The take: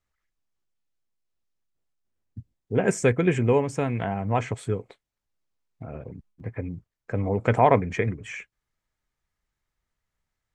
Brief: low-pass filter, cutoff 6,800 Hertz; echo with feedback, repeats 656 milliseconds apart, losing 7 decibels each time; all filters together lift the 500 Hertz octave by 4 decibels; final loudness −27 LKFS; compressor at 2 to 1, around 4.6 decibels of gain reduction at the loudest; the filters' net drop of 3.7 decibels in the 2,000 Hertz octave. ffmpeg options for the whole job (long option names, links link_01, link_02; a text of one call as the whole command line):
ffmpeg -i in.wav -af "lowpass=6800,equalizer=frequency=500:width_type=o:gain=5,equalizer=frequency=2000:width_type=o:gain=-5,acompressor=threshold=-19dB:ratio=2,aecho=1:1:656|1312|1968|2624|3280:0.447|0.201|0.0905|0.0407|0.0183,volume=-1dB" out.wav